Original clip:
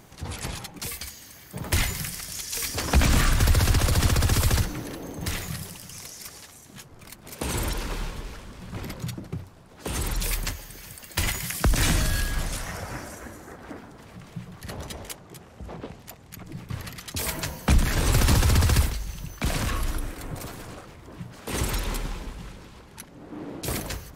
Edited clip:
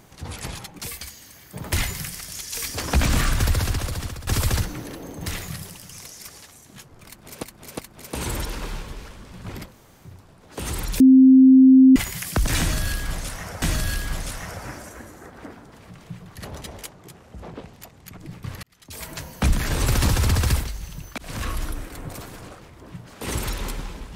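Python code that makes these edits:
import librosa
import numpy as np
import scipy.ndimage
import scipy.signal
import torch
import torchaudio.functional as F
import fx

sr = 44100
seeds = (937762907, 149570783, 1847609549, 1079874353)

y = fx.edit(x, sr, fx.fade_out_to(start_s=3.41, length_s=0.86, floor_db=-18.5),
    fx.repeat(start_s=7.07, length_s=0.36, count=3),
    fx.room_tone_fill(start_s=8.96, length_s=0.43, crossfade_s=0.16),
    fx.bleep(start_s=10.28, length_s=0.96, hz=262.0, db=-7.5),
    fx.repeat(start_s=11.88, length_s=1.02, count=2),
    fx.fade_in_span(start_s=16.89, length_s=0.85),
    fx.fade_in_span(start_s=19.44, length_s=0.28), tone=tone)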